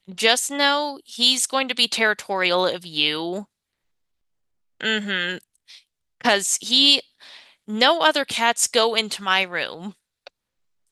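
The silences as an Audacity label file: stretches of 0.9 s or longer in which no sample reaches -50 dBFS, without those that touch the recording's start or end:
3.450000	4.800000	silence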